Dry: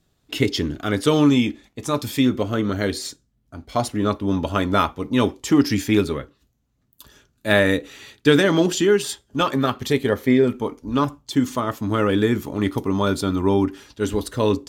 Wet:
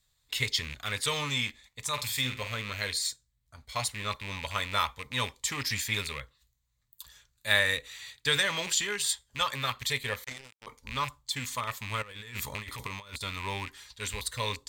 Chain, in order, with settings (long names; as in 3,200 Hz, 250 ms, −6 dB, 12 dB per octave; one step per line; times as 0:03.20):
loose part that buzzes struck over −27 dBFS, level −22 dBFS
guitar amp tone stack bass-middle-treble 10-0-10
0:01.93–0:02.52: flutter between parallel walls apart 8 metres, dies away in 0.28 s
0:12.02–0:13.21: compressor whose output falls as the input rises −39 dBFS, ratio −0.5
EQ curve with evenly spaced ripples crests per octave 1, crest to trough 6 dB
0:10.24–0:10.67: power curve on the samples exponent 3